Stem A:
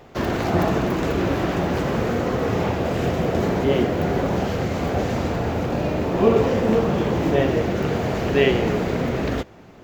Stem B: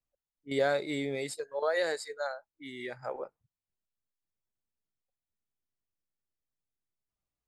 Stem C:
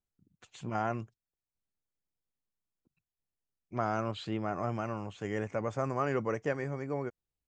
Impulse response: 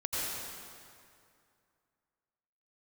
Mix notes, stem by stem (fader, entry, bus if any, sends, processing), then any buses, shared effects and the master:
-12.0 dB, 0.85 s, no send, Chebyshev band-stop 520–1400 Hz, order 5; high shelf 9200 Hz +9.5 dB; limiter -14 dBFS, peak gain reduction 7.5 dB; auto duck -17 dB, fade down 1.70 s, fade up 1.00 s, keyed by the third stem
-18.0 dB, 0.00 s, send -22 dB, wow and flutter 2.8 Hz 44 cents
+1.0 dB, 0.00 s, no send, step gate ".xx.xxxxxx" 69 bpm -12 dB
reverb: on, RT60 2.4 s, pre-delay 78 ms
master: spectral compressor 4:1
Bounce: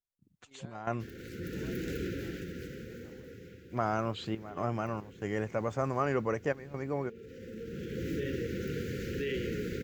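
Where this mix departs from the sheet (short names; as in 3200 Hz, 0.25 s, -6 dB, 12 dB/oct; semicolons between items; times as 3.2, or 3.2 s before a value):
stem B -18.0 dB -> -28.0 dB; master: missing spectral compressor 4:1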